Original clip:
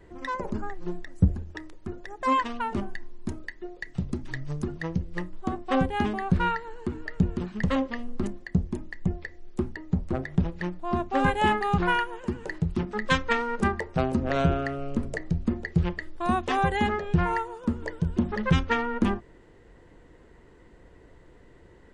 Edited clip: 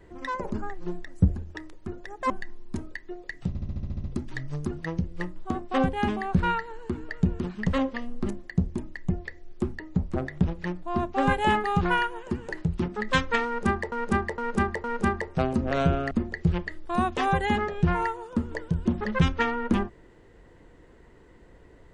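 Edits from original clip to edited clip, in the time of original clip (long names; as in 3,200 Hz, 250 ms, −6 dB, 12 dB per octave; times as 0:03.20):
0:02.30–0:02.83: remove
0:04.01: stutter 0.07 s, 9 plays
0:13.43–0:13.89: repeat, 4 plays
0:14.70–0:15.42: remove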